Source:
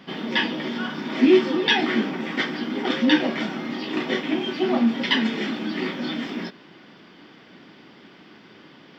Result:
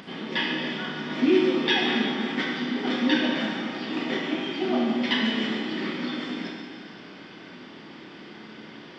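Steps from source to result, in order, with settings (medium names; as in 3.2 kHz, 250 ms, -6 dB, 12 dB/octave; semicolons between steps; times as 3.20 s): upward compressor, threshold -33 dBFS; Schroeder reverb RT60 2.2 s, combs from 25 ms, DRR -0.5 dB; resampled via 22.05 kHz; trim -5.5 dB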